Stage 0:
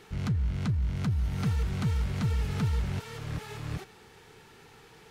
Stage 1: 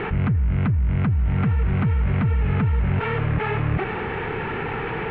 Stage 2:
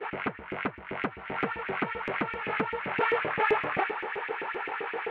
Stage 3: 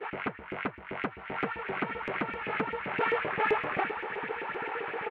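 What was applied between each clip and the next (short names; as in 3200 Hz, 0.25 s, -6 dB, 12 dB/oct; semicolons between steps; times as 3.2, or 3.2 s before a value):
steep low-pass 2600 Hz 36 dB/oct; fast leveller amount 70%; gain +6 dB
expander -20 dBFS; LFO high-pass saw up 7.7 Hz 330–2500 Hz
outdoor echo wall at 280 m, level -10 dB; gain -2 dB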